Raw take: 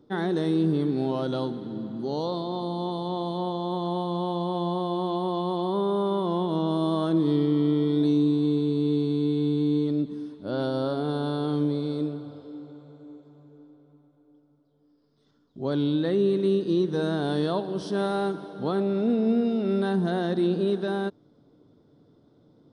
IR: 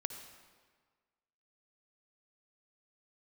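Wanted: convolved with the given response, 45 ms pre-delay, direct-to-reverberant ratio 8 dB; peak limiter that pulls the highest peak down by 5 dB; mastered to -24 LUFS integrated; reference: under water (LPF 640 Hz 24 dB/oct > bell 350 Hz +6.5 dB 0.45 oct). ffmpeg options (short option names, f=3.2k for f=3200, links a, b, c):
-filter_complex "[0:a]alimiter=limit=-18.5dB:level=0:latency=1,asplit=2[a][b];[1:a]atrim=start_sample=2205,adelay=45[c];[b][c]afir=irnorm=-1:irlink=0,volume=-7.5dB[d];[a][d]amix=inputs=2:normalize=0,lowpass=f=640:w=0.5412,lowpass=f=640:w=1.3066,equalizer=f=350:t=o:w=0.45:g=6.5,volume=0.5dB"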